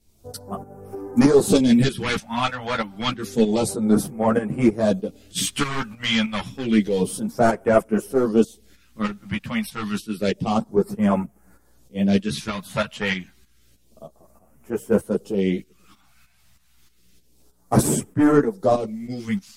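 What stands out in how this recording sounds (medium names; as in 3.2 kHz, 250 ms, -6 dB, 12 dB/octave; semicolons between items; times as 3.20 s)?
phasing stages 2, 0.29 Hz, lowest notch 360–3700 Hz; tremolo saw up 3.2 Hz, depth 70%; a shimmering, thickened sound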